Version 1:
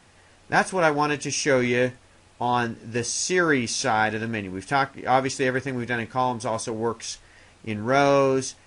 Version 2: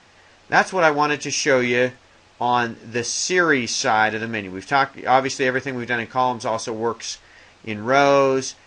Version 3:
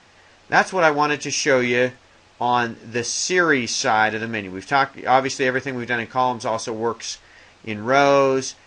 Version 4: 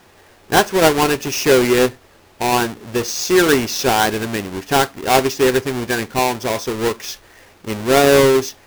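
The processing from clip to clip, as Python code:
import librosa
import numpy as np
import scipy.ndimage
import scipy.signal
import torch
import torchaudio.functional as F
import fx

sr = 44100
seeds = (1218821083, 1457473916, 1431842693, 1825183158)

y1 = scipy.signal.sosfilt(scipy.signal.butter(4, 6600.0, 'lowpass', fs=sr, output='sos'), x)
y1 = fx.low_shelf(y1, sr, hz=260.0, db=-8.0)
y1 = y1 * librosa.db_to_amplitude(5.0)
y2 = y1
y3 = fx.halfwave_hold(y2, sr)
y3 = fx.peak_eq(y3, sr, hz=390.0, db=6.5, octaves=0.35)
y3 = y3 * librosa.db_to_amplitude(-2.0)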